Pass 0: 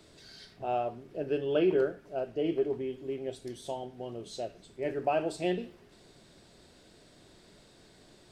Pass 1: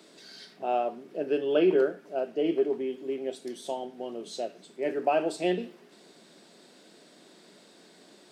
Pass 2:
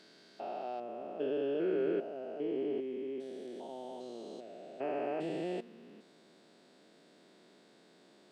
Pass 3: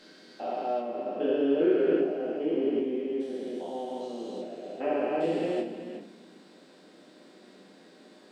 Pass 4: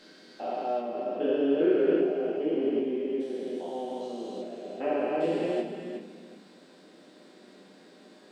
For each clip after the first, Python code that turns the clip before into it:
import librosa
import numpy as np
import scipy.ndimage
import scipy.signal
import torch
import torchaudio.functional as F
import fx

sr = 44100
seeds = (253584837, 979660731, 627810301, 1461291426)

y1 = scipy.signal.sosfilt(scipy.signal.butter(6, 180.0, 'highpass', fs=sr, output='sos'), x)
y1 = y1 * librosa.db_to_amplitude(3.5)
y2 = fx.spec_steps(y1, sr, hold_ms=400)
y2 = fx.high_shelf(y2, sr, hz=5200.0, db=-10.0)
y2 = y2 * librosa.db_to_amplitude(-4.5)
y3 = y2 + 10.0 ** (-11.0 / 20.0) * np.pad(y2, (int(368 * sr / 1000.0), 0))[:len(y2)]
y3 = fx.room_shoebox(y3, sr, seeds[0], volume_m3=150.0, walls='furnished', distance_m=2.1)
y3 = y3 * librosa.db_to_amplitude(2.5)
y4 = y3 + 10.0 ** (-11.5 / 20.0) * np.pad(y3, (int(363 * sr / 1000.0), 0))[:len(y3)]